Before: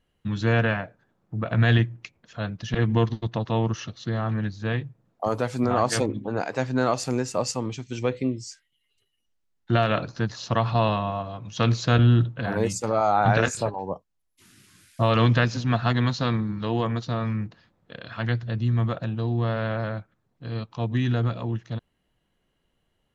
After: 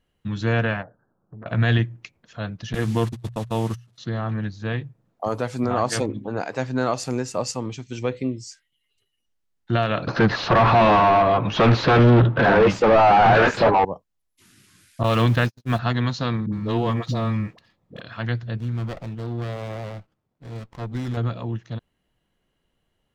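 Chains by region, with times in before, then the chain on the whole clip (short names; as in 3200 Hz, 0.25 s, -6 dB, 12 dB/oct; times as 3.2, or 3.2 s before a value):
0.82–1.46 elliptic low-pass 1500 Hz + compressor 8:1, threshold -36 dBFS + Doppler distortion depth 0.73 ms
2.73–3.98 delta modulation 64 kbps, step -35 dBFS + gate -28 dBFS, range -29 dB + notches 60/120 Hz
10.07–13.85 overdrive pedal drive 35 dB, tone 1700 Hz, clips at -6 dBFS + air absorption 220 m
15.03–15.79 zero-crossing step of -30 dBFS + gate -22 dBFS, range -58 dB
16.46–18.01 notch 1500 Hz, Q 6.6 + sample leveller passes 1 + dispersion highs, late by 65 ms, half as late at 490 Hz
18.57–21.17 low shelf 480 Hz -4 dB + running maximum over 17 samples
whole clip: dry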